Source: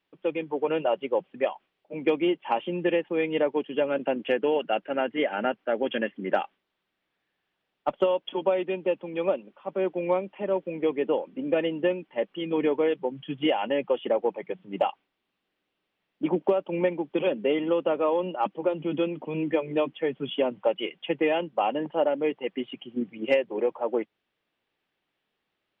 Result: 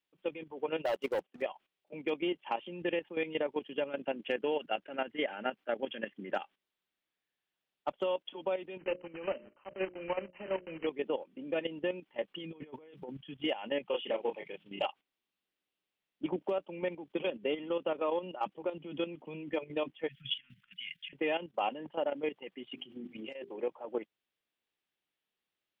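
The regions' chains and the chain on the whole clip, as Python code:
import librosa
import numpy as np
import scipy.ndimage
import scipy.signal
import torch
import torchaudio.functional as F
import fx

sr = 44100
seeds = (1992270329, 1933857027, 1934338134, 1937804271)

y = fx.chain(x, sr, fx.highpass(hz=230.0, slope=12),
    fx.high_shelf(hz=2600.0, db=-7.5),
    fx.leveller(passes=2), at=(0.85, 1.42))
y = fx.chain(y, sr, fx.block_float(bits=3),
    fx.brickwall_lowpass(high_hz=3100.0),
    fx.hum_notches(base_hz=60, count=10), at=(8.78, 10.87))
y = fx.chain(y, sr, fx.peak_eq(hz=140.0, db=5.0, octaves=0.81),
    fx.over_compress(threshold_db=-31.0, ratio=-0.5), at=(12.34, 13.17))
y = fx.chain(y, sr, fx.peak_eq(hz=2800.0, db=10.0, octaves=0.81),
    fx.doubler(ms=30.0, db=-4), at=(13.86, 14.86))
y = fx.chain(y, sr, fx.high_shelf(hz=2400.0, db=4.0),
    fx.over_compress(threshold_db=-32.0, ratio=-1.0),
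    fx.ellip_bandstop(low_hz=160.0, high_hz=1700.0, order=3, stop_db=50), at=(20.08, 21.13))
y = fx.chain(y, sr, fx.hum_notches(base_hz=50, count=8),
    fx.over_compress(threshold_db=-30.0, ratio=-1.0), at=(22.73, 23.56))
y = fx.high_shelf(y, sr, hz=3100.0, db=10.5)
y = fx.level_steps(y, sr, step_db=12)
y = y * librosa.db_to_amplitude(-6.5)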